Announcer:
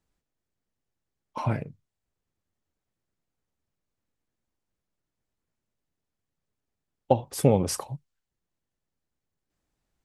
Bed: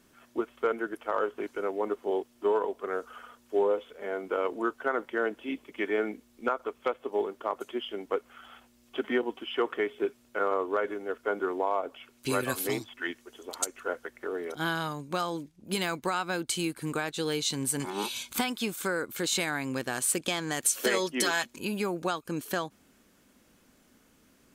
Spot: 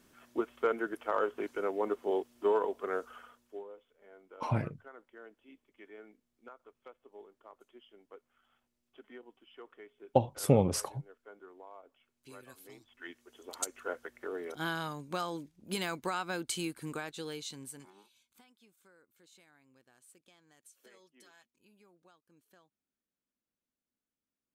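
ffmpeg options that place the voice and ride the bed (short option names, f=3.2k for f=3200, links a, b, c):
-filter_complex "[0:a]adelay=3050,volume=-4dB[a];[1:a]volume=16dB,afade=t=out:st=2.96:d=0.68:silence=0.0891251,afade=t=in:st=12.78:d=0.85:silence=0.125893,afade=t=out:st=16.54:d=1.5:silence=0.0375837[b];[a][b]amix=inputs=2:normalize=0"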